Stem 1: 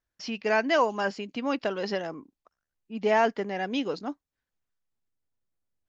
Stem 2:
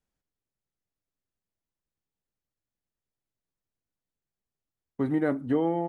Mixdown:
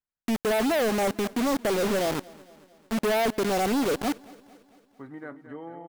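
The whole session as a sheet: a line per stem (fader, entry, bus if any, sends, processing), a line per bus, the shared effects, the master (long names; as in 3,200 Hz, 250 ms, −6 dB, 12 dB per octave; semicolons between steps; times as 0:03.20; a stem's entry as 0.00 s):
+2.0 dB, 0.00 s, no send, echo send −22.5 dB, elliptic low-pass filter 790 Hz, stop band 40 dB; log-companded quantiser 2 bits
−16.5 dB, 0.00 s, no send, echo send −11 dB, parametric band 1,400 Hz +10 dB 1.6 octaves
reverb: not used
echo: repeating echo 224 ms, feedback 56%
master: no processing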